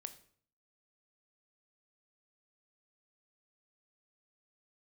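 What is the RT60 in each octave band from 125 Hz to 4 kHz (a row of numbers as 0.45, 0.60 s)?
0.65, 0.65, 0.55, 0.50, 0.50, 0.45 s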